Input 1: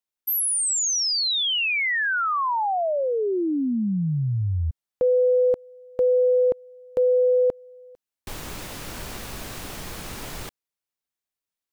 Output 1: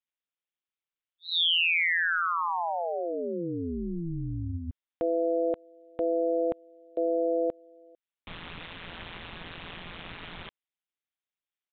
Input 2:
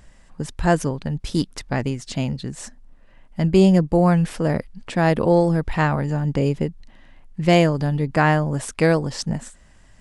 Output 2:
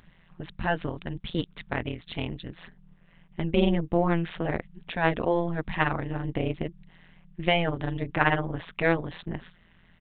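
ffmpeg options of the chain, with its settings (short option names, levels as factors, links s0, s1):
-af "tiltshelf=f=1300:g=-5,aresample=8000,aresample=44100,tremolo=f=170:d=1"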